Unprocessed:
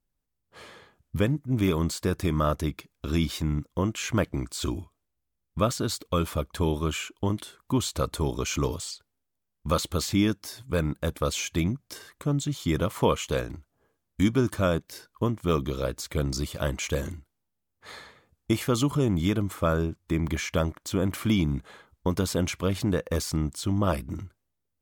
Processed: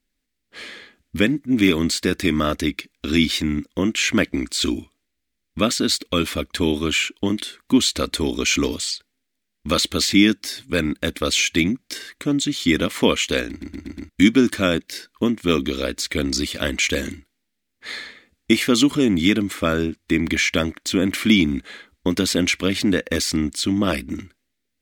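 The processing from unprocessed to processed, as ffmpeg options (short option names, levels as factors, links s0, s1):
-filter_complex "[0:a]asplit=6[s0][s1][s2][s3][s4][s5];[s0]atrim=end=13.612[s6];[s1]atrim=start=13.488:end=13.612[s7];[s2]atrim=start=13.488:end=13.612[s8];[s3]atrim=start=13.488:end=13.612[s9];[s4]atrim=start=13.488:end=13.612[s10];[s5]atrim=start=14.088[s11];[s6][s7]acrossfade=d=0.004:c1=hsin:c2=hsin[s12];[s12][s8]acrossfade=d=0.004:c1=hsin:c2=hsin[s13];[s13][s9]acrossfade=d=0.004:c1=hsin:c2=hsin[s14];[s14][s10]acrossfade=d=0.004:c1=hsin:c2=hsin[s15];[s15][s11]acrossfade=d=0.004:c1=hsin:c2=hsin,equalizer=f=125:t=o:w=1:g=-12,equalizer=f=250:t=o:w=1:g=11,equalizer=f=1000:t=o:w=1:g=-7,equalizer=f=2000:t=o:w=1:g=12,equalizer=f=4000:t=o:w=1:g=8,equalizer=f=8000:t=o:w=1:g=4,volume=1.41"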